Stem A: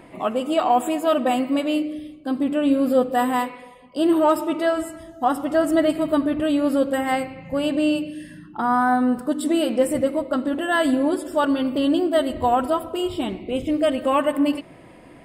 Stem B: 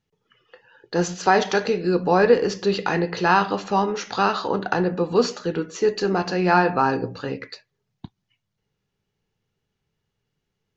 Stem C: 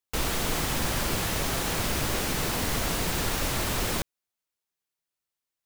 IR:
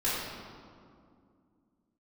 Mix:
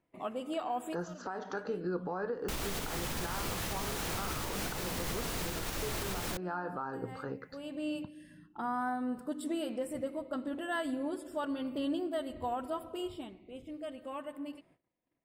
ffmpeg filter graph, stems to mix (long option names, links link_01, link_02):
-filter_complex "[0:a]agate=range=-21dB:threshold=-42dB:ratio=16:detection=peak,volume=-13.5dB,afade=type=out:start_time=13.04:duration=0.27:silence=0.375837[link_01];[1:a]highshelf=frequency=1800:width_type=q:width=3:gain=-8,acompressor=threshold=-17dB:ratio=6,volume=-10dB,asplit=2[link_02][link_03];[2:a]adelay=2350,volume=0dB[link_04];[link_03]apad=whole_len=672197[link_05];[link_01][link_05]sidechaincompress=threshold=-43dB:ratio=8:attack=7.4:release=797[link_06];[link_06][link_02][link_04]amix=inputs=3:normalize=0,alimiter=level_in=2dB:limit=-24dB:level=0:latency=1:release=367,volume=-2dB"